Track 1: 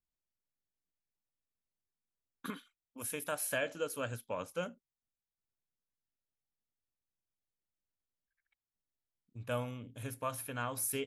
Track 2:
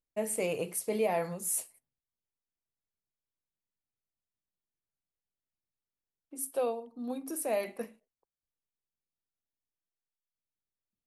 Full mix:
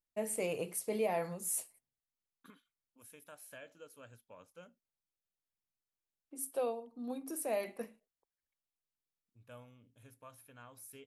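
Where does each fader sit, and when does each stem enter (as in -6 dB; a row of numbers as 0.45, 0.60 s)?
-17.0, -4.0 dB; 0.00, 0.00 s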